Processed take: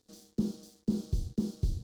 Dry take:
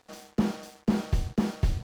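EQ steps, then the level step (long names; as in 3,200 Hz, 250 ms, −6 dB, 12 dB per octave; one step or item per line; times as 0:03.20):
flat-topped bell 1,300 Hz −16 dB 2.6 octaves
dynamic equaliser 1,900 Hz, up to −7 dB, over −58 dBFS, Q 1.5
−5.0 dB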